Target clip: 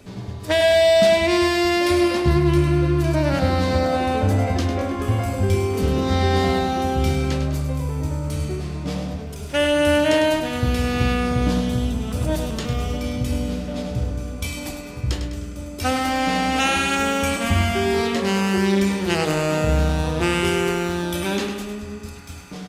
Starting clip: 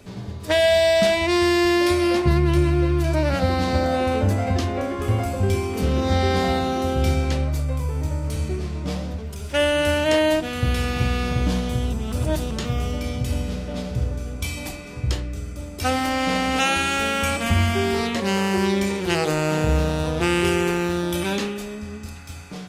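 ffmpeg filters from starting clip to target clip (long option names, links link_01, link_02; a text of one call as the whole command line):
ffmpeg -i in.wav -af "equalizer=frequency=280:width=4.5:gain=3,aecho=1:1:102|204|306|408|510|612:0.376|0.192|0.0978|0.0499|0.0254|0.013" out.wav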